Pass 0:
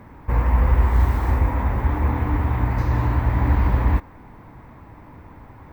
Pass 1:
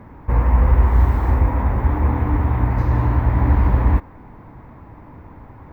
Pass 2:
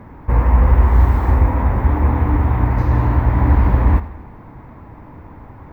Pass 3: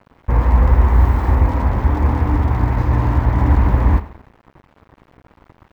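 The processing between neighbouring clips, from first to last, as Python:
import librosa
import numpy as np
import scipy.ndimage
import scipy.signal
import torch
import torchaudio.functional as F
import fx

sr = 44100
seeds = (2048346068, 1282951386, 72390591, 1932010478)

y1 = fx.high_shelf(x, sr, hz=2400.0, db=-10.0)
y1 = y1 * librosa.db_to_amplitude(3.0)
y2 = fx.echo_feedback(y1, sr, ms=81, feedback_pct=55, wet_db=-16)
y2 = y2 * librosa.db_to_amplitude(2.5)
y3 = np.sign(y2) * np.maximum(np.abs(y2) - 10.0 ** (-35.0 / 20.0), 0.0)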